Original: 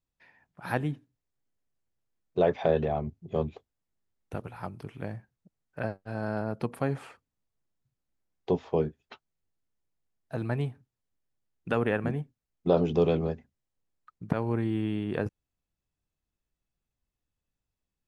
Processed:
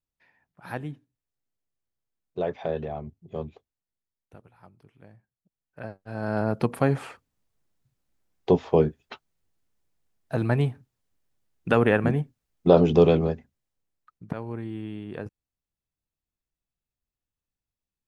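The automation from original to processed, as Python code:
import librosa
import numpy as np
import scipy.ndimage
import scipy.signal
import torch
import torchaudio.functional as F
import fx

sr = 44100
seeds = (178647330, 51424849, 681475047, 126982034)

y = fx.gain(x, sr, db=fx.line((3.53, -4.5), (4.5, -15.0), (5.17, -15.0), (6.0, -3.0), (6.44, 7.0), (13.02, 7.0), (14.48, -5.5)))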